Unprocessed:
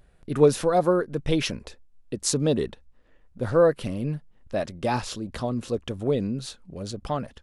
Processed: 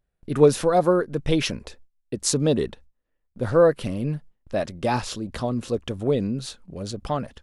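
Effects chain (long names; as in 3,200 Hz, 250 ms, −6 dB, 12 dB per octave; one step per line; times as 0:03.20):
noise gate with hold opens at −44 dBFS
level +2 dB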